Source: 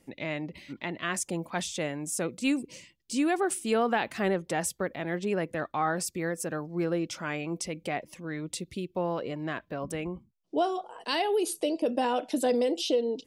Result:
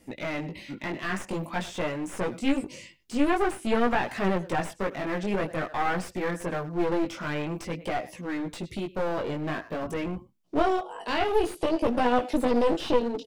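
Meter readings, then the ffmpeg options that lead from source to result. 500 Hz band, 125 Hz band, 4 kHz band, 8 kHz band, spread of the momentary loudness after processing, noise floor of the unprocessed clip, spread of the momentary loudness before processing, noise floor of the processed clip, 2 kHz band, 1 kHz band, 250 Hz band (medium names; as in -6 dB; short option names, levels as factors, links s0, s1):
+2.0 dB, +2.5 dB, -1.5 dB, -9.5 dB, 9 LU, -67 dBFS, 9 LU, -54 dBFS, +2.0 dB, +3.0 dB, +2.5 dB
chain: -filter_complex "[0:a]asplit=2[s0][s1];[s1]adelay=100,highpass=300,lowpass=3400,asoftclip=type=hard:threshold=0.0562,volume=0.126[s2];[s0][s2]amix=inputs=2:normalize=0,flanger=delay=16:depth=5.1:speed=0.49,aeval=exprs='clip(val(0),-1,0.0106)':c=same,acrossover=split=2900[s3][s4];[s4]acompressor=threshold=0.00224:ratio=4:attack=1:release=60[s5];[s3][s5]amix=inputs=2:normalize=0,volume=2.66"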